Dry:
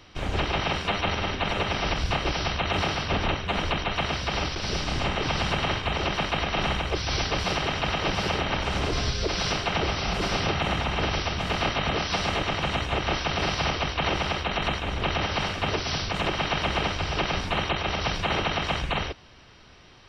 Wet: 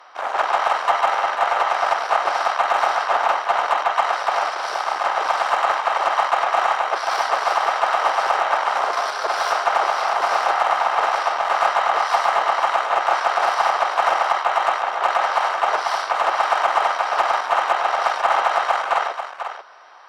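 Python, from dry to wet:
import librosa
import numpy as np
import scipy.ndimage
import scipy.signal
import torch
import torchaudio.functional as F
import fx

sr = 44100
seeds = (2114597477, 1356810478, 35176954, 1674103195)

p1 = fx.cheby_harmonics(x, sr, harmonics=(6, 8), levels_db=(-17, -30), full_scale_db=-14.5)
p2 = scipy.signal.sosfilt(scipy.signal.cheby1(3, 1.0, 700.0, 'highpass', fs=sr, output='sos'), p1)
p3 = fx.high_shelf_res(p2, sr, hz=1900.0, db=-11.5, q=1.5)
p4 = p3 + 10.0 ** (-9.5 / 20.0) * np.pad(p3, (int(491 * sr / 1000.0), 0))[:len(p3)]
p5 = 10.0 ** (-25.0 / 20.0) * np.tanh(p4 / 10.0 ** (-25.0 / 20.0))
p6 = p4 + (p5 * 10.0 ** (-8.5 / 20.0))
y = p6 * 10.0 ** (8.5 / 20.0)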